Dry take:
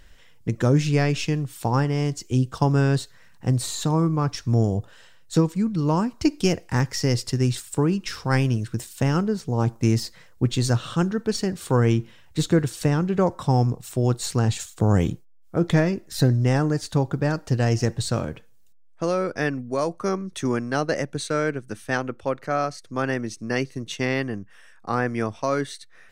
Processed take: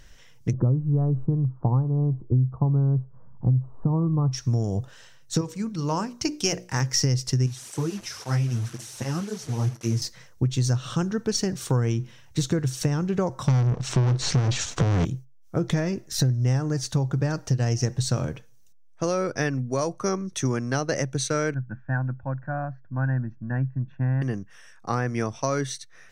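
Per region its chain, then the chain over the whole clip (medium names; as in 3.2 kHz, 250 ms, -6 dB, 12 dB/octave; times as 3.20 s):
0.53–4.32 s: steep low-pass 1.2 kHz 48 dB/octave + bass shelf 270 Hz +8.5 dB
5.41–6.94 s: bass shelf 350 Hz -9 dB + hum notches 60/120/180/240/300/360/420/480/540/600 Hz
7.46–10.02 s: one-bit delta coder 64 kbps, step -29 dBFS + feedback comb 110 Hz, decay 0.23 s + cancelling through-zero flanger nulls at 1.9 Hz, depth 7.4 ms
13.48–15.05 s: waveshaping leveller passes 5 + distance through air 130 m + loudspeaker Doppler distortion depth 0.14 ms
21.54–24.22 s: four-pole ladder low-pass 1.6 kHz, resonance 70% + tilt shelf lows +8 dB, about 690 Hz + comb 1.2 ms, depth 88%
whole clip: peaking EQ 130 Hz +11 dB 0.22 oct; compression 6:1, threshold -20 dBFS; peaking EQ 5.9 kHz +10.5 dB 0.28 oct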